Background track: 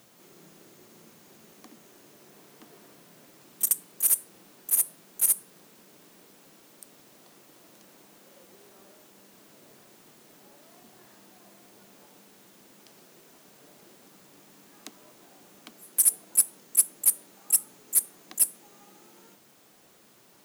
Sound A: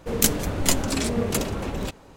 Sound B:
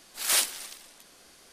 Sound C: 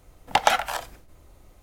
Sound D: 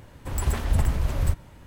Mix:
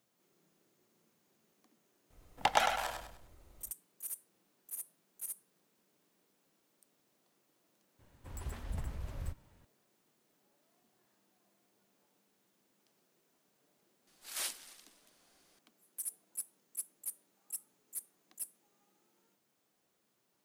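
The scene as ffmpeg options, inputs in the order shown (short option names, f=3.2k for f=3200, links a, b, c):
-filter_complex "[0:a]volume=-20dB[a];[3:a]aecho=1:1:101|202|303|404:0.501|0.175|0.0614|0.0215[b];[4:a]flanger=delay=3.6:depth=9:regen=79:speed=1.5:shape=sinusoidal[c];[b]atrim=end=1.62,asetpts=PTS-STARTPTS,volume=-9.5dB,afade=t=in:d=0.004:c=hsin,afade=t=out:st=1.616:d=0.004:c=hsin,adelay=2100[d];[c]atrim=end=1.66,asetpts=PTS-STARTPTS,volume=-12.5dB,afade=t=in:d=0.004:c=hsin,afade=t=out:st=1.656:d=0.004:c=hsin,adelay=7990[e];[2:a]atrim=end=1.52,asetpts=PTS-STARTPTS,volume=-14.5dB,afade=t=in:d=0.004:c=hsin,afade=t=out:st=1.516:d=0.004:c=hsin,adelay=14070[f];[a][d][e][f]amix=inputs=4:normalize=0"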